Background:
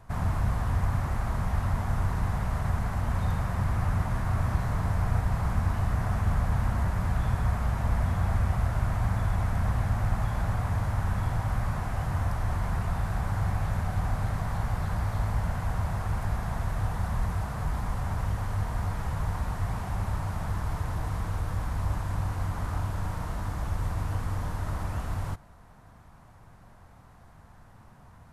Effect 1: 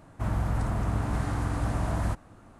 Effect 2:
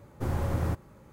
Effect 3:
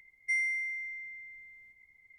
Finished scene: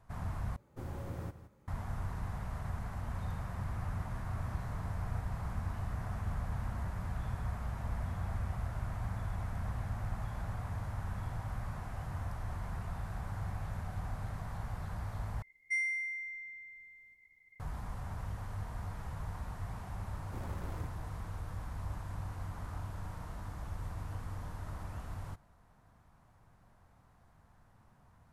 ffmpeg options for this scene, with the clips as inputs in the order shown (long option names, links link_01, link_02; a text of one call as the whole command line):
ffmpeg -i bed.wav -i cue0.wav -i cue1.wav -i cue2.wav -filter_complex "[2:a]asplit=2[link_01][link_02];[0:a]volume=-11dB[link_03];[link_01]aecho=1:1:168:0.224[link_04];[link_02]asoftclip=type=tanh:threshold=-35.5dB[link_05];[link_03]asplit=3[link_06][link_07][link_08];[link_06]atrim=end=0.564[link_09];[link_04]atrim=end=1.12,asetpts=PTS-STARTPTS,volume=-12.5dB[link_10];[link_07]atrim=start=1.676:end=15.424[link_11];[3:a]atrim=end=2.18,asetpts=PTS-STARTPTS,volume=-3dB[link_12];[link_08]atrim=start=17.596[link_13];[link_05]atrim=end=1.12,asetpts=PTS-STARTPTS,volume=-7dB,afade=type=in:duration=0.004:curve=hsin,afade=type=out:start_time=1.116:duration=0.004:curve=hsin,adelay=20120[link_14];[link_09][link_10]acrossfade=duration=0.004:curve1=hsin:curve2=hsin[link_15];[link_15][link_11]acrossfade=duration=0.004:curve1=hsin:curve2=hsin[link_16];[link_16][link_12]acrossfade=duration=0.004:curve1=hsin:curve2=hsin[link_17];[link_17][link_13]acrossfade=duration=0.004:curve1=hsin:curve2=hsin[link_18];[link_18][link_14]amix=inputs=2:normalize=0" out.wav